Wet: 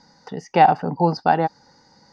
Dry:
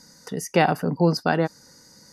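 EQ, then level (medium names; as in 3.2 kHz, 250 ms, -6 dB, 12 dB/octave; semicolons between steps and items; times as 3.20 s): low-pass 4.8 kHz 24 dB/octave; peaking EQ 820 Hz +14.5 dB 0.37 oct; -1.5 dB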